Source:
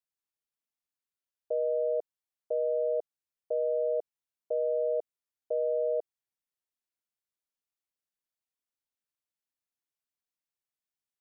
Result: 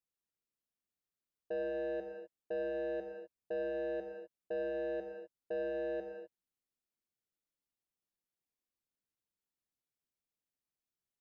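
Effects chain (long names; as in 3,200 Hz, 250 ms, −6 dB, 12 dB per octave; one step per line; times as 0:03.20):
soft clipping −32.5 dBFS, distortion −10 dB
drawn EQ curve 300 Hz 0 dB, 470 Hz −3 dB, 930 Hz −9 dB
on a send: convolution reverb, pre-delay 3 ms, DRR 4 dB
on the sum: level +3 dB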